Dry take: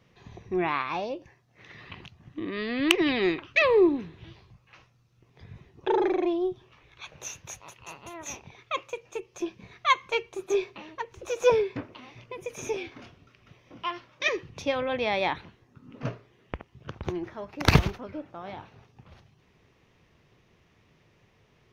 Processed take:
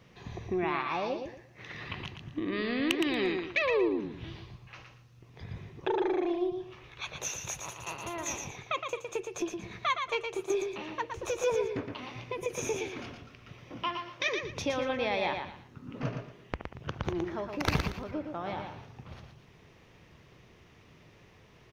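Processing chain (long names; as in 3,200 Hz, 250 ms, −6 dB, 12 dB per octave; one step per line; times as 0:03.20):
downward compressor 2.5 to 1, threshold −37 dBFS, peak gain reduction 16.5 dB
on a send: repeating echo 116 ms, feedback 27%, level −6 dB
on the sum: level +4.5 dB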